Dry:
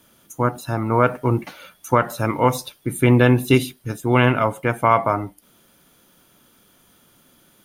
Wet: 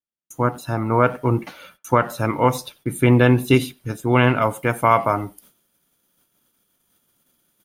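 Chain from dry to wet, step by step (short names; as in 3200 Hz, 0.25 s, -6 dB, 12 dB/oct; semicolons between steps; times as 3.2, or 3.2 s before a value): high shelf 5600 Hz -2.5 dB, from 4.42 s +7.5 dB; gate -49 dBFS, range -45 dB; speakerphone echo 90 ms, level -24 dB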